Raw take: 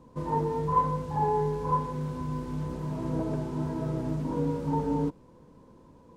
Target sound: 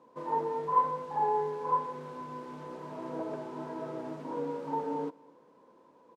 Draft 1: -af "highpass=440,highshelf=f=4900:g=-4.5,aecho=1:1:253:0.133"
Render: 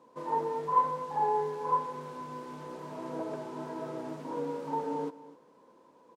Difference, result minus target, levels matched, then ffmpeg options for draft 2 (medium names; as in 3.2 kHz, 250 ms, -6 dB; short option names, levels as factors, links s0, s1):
echo-to-direct +8.5 dB; 8 kHz band +5.5 dB
-af "highpass=440,highshelf=f=4900:g=-12.5,aecho=1:1:253:0.0501"